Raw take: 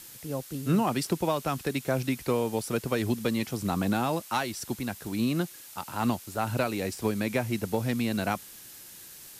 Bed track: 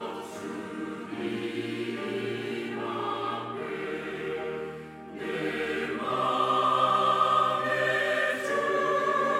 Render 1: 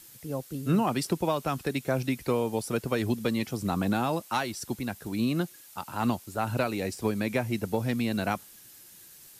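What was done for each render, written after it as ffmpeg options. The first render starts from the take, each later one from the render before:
ffmpeg -i in.wav -af "afftdn=noise_reduction=6:noise_floor=-48" out.wav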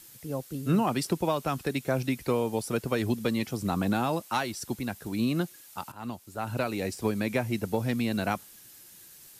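ffmpeg -i in.wav -filter_complex "[0:a]asplit=2[link_01][link_02];[link_01]atrim=end=5.92,asetpts=PTS-STARTPTS,afade=type=out:start_time=5.916:duration=0.004:curve=hsin:silence=0.177828[link_03];[link_02]atrim=start=5.92,asetpts=PTS-STARTPTS,afade=type=in:duration=0.91:silence=0.177828[link_04];[link_03][link_04]concat=n=2:v=0:a=1" out.wav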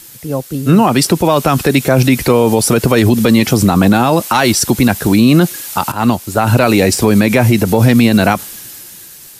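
ffmpeg -i in.wav -af "dynaudnorm=framelen=180:gausssize=13:maxgain=11dB,alimiter=level_in=14.5dB:limit=-1dB:release=50:level=0:latency=1" out.wav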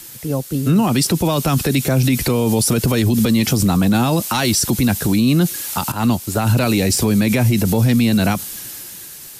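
ffmpeg -i in.wav -filter_complex "[0:a]acrossover=split=270|3000[link_01][link_02][link_03];[link_02]acompressor=threshold=-26dB:ratio=2[link_04];[link_01][link_04][link_03]amix=inputs=3:normalize=0,alimiter=limit=-7.5dB:level=0:latency=1:release=12" out.wav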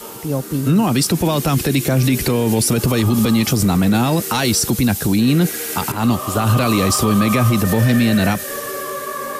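ffmpeg -i in.wav -i bed.wav -filter_complex "[1:a]volume=-0.5dB[link_01];[0:a][link_01]amix=inputs=2:normalize=0" out.wav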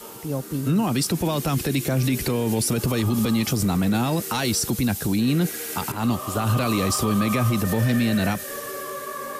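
ffmpeg -i in.wav -af "volume=-6.5dB" out.wav

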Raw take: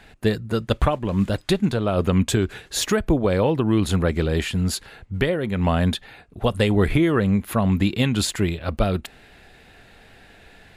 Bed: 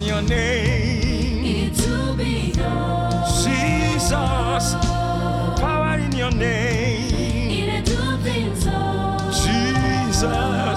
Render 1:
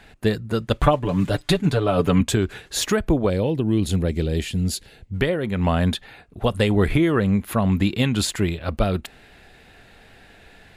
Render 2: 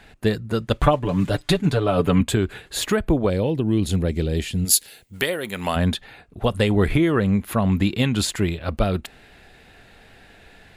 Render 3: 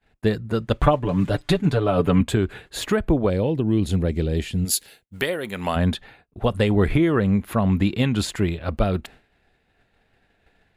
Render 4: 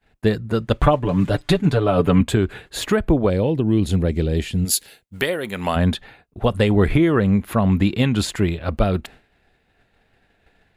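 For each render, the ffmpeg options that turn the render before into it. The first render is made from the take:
ffmpeg -i in.wav -filter_complex "[0:a]asettb=1/sr,asplit=3[link_01][link_02][link_03];[link_01]atrim=end=0.824[link_04];[link_02]atrim=start=0.82:end=2.21,asetpts=PTS-STARTPTS,afade=type=in:duration=0.004:curve=qsin,afade=type=out:start_time=1.386:duration=0.004:curve=qsin,aecho=1:1:6.9:0.87,atrim=end_sample=61299[link_05];[link_03]atrim=start=2.206[link_06];[link_04][link_05]acrossfade=duration=0.004:curve1=hsin:curve2=qsin[link_07];[link_07][link_06]acrossfade=duration=0.004:curve1=qsin:curve2=hsin,asettb=1/sr,asplit=3[link_08][link_09][link_10];[link_08]atrim=end=3.304[link_11];[link_09]atrim=start=3.3:end=5.13,asetpts=PTS-STARTPTS,afade=type=in:duration=0.004:curve=qsin,afade=type=out:start_time=1.826:duration=0.004:curve=qsin,equalizer=frequency=1200:width=1:gain=-13.5[link_12];[link_10]atrim=start=5.126[link_13];[link_11][link_12]acrossfade=duration=0.004:curve1=hsin:curve2=qsin[link_14];[link_14][link_13]acrossfade=duration=0.004:curve1=qsin:curve2=hsin" out.wav
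ffmpeg -i in.wav -filter_complex "[0:a]asettb=1/sr,asplit=3[link_01][link_02][link_03];[link_01]atrim=end=1.994[link_04];[link_02]atrim=start=1.99:end=3.14,asetpts=PTS-STARTPTS,afade=type=in:duration=0.004:curve=qsin,afade=type=out:start_time=1.146:duration=0.004:curve=qsin,equalizer=frequency=5800:width=3.3:gain=-8[link_05];[link_03]atrim=start=3.136[link_06];[link_04][link_05]acrossfade=duration=0.004:curve1=hsin:curve2=qsin[link_07];[link_07][link_06]acrossfade=duration=0.004:curve1=qsin:curve2=hsin,asplit=3[link_08][link_09][link_10];[link_08]afade=type=out:start_time=4.64:duration=0.02[link_11];[link_09]aemphasis=mode=production:type=riaa,afade=type=in:start_time=4.64:duration=0.02,afade=type=out:start_time=5.75:duration=0.02[link_12];[link_10]afade=type=in:start_time=5.75:duration=0.02[link_13];[link_11][link_12][link_13]amix=inputs=3:normalize=0" out.wav
ffmpeg -i in.wav -af "highshelf=frequency=3300:gain=-6.5,agate=range=-33dB:threshold=-39dB:ratio=3:detection=peak" out.wav
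ffmpeg -i in.wav -af "volume=2.5dB,alimiter=limit=-3dB:level=0:latency=1" out.wav

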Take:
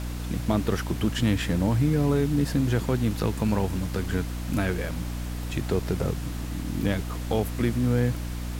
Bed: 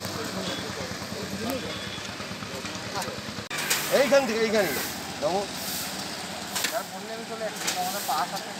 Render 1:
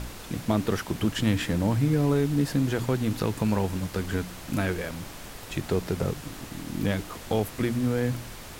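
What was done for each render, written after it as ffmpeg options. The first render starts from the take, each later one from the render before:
ffmpeg -i in.wav -af "bandreject=frequency=60:width_type=h:width=4,bandreject=frequency=120:width_type=h:width=4,bandreject=frequency=180:width_type=h:width=4,bandreject=frequency=240:width_type=h:width=4,bandreject=frequency=300:width_type=h:width=4" out.wav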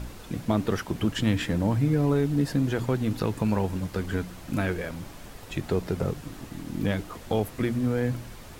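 ffmpeg -i in.wav -af "afftdn=noise_reduction=6:noise_floor=-42" out.wav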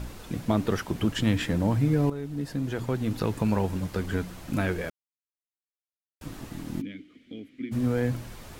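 ffmpeg -i in.wav -filter_complex "[0:a]asplit=3[link_01][link_02][link_03];[link_01]afade=type=out:start_time=6.8:duration=0.02[link_04];[link_02]asplit=3[link_05][link_06][link_07];[link_05]bandpass=frequency=270:width_type=q:width=8,volume=0dB[link_08];[link_06]bandpass=frequency=2290:width_type=q:width=8,volume=-6dB[link_09];[link_07]bandpass=frequency=3010:width_type=q:width=8,volume=-9dB[link_10];[link_08][link_09][link_10]amix=inputs=3:normalize=0,afade=type=in:start_time=6.8:duration=0.02,afade=type=out:start_time=7.71:duration=0.02[link_11];[link_03]afade=type=in:start_time=7.71:duration=0.02[link_12];[link_04][link_11][link_12]amix=inputs=3:normalize=0,asplit=4[link_13][link_14][link_15][link_16];[link_13]atrim=end=2.1,asetpts=PTS-STARTPTS,afade=type=out:start_time=2.096:duration=0.004:curve=hsin:silence=0.223872[link_17];[link_14]atrim=start=2.1:end=4.9,asetpts=PTS-STARTPTS,afade=type=in:duration=1.22:silence=0.223872,afade=type=out:start_time=2.796:duration=0.004:curve=hsin[link_18];[link_15]atrim=start=4.9:end=6.21,asetpts=PTS-STARTPTS,volume=0[link_19];[link_16]atrim=start=6.21,asetpts=PTS-STARTPTS,afade=type=in:duration=0.004:curve=hsin[link_20];[link_17][link_18][link_19][link_20]concat=n=4:v=0:a=1" out.wav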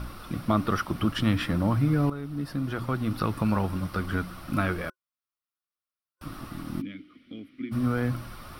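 ffmpeg -i in.wav -af "superequalizer=7b=0.562:10b=2.82:15b=0.251" out.wav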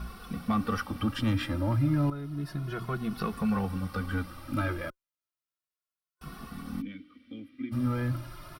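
ffmpeg -i in.wav -filter_complex "[0:a]asoftclip=type=tanh:threshold=-15dB,asplit=2[link_01][link_02];[link_02]adelay=2.3,afreqshift=0.32[link_03];[link_01][link_03]amix=inputs=2:normalize=1" out.wav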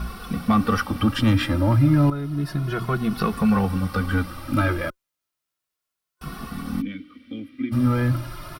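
ffmpeg -i in.wav -af "volume=9dB" out.wav

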